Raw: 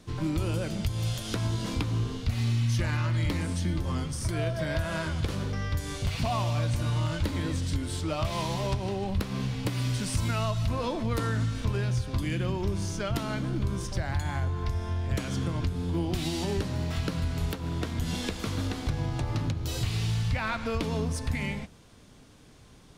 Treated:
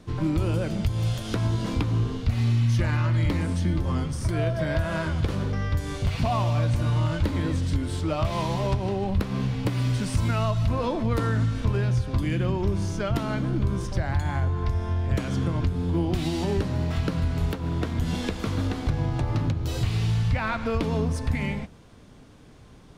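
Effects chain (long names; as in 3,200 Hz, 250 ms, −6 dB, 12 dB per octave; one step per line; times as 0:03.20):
high-shelf EQ 2,800 Hz −8.5 dB
level +4.5 dB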